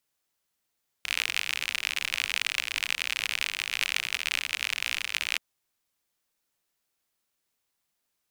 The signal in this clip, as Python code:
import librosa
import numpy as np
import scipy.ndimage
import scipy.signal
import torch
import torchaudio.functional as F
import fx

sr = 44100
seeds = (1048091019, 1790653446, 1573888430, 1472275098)

y = fx.rain(sr, seeds[0], length_s=4.33, drops_per_s=60.0, hz=2500.0, bed_db=-26.0)